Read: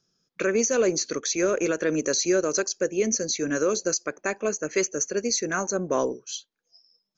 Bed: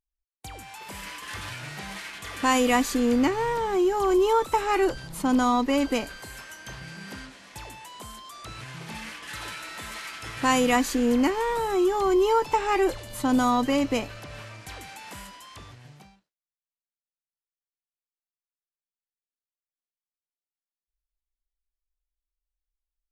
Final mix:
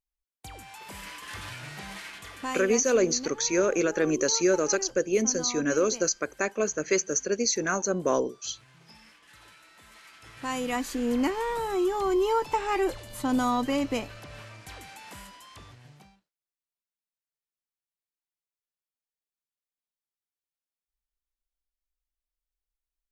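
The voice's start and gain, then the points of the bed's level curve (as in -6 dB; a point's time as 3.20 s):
2.15 s, -0.5 dB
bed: 2.14 s -3 dB
2.76 s -17 dB
9.76 s -17 dB
11.23 s -3.5 dB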